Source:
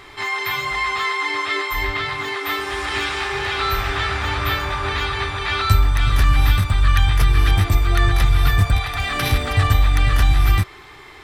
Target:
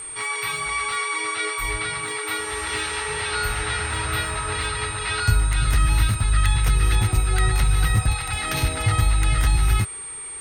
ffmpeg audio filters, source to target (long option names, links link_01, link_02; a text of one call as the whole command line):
ffmpeg -i in.wav -af "aeval=exprs='val(0)+0.0398*sin(2*PI*8000*n/s)':channel_layout=same,asetrate=47628,aresample=44100,volume=-4dB" out.wav